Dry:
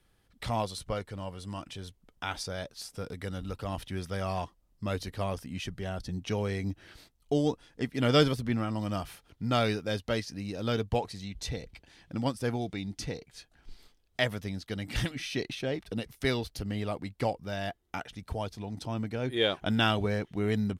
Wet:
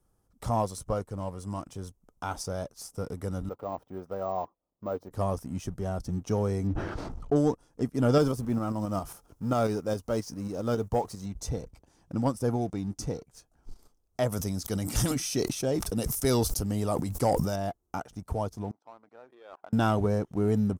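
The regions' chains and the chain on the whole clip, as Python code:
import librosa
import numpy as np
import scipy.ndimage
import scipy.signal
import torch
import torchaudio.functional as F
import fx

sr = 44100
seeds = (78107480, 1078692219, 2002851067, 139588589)

y = fx.chain(x, sr, fx.bandpass_q(hz=620.0, q=0.92),
    fx.resample_bad(factor=2, down='none', up='hold'), at=(3.49, 5.11))
y = fx.chain(y, sr, fx.lowpass(hz=2600.0, slope=12),
    fx.sustainer(db_per_s=23.0), at=(6.67, 7.36))
y = fx.chain(y, sr, fx.law_mismatch(coded='mu'),
    fx.peak_eq(hz=87.0, db=-3.5, octaves=2.1),
    fx.tremolo_shape(shape='saw_up', hz=7.4, depth_pct=45), at=(8.18, 11.26))
y = fx.chain(y, sr, fx.high_shelf(hz=2800.0, db=12.0),
    fx.sustainer(db_per_s=35.0), at=(14.32, 17.56))
y = fx.chain(y, sr, fx.level_steps(step_db=21),
    fx.bandpass_edges(low_hz=710.0, high_hz=2200.0), at=(18.71, 19.73))
y = fx.band_shelf(y, sr, hz=2700.0, db=-15.5, octaves=1.7)
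y = fx.leveller(y, sr, passes=1)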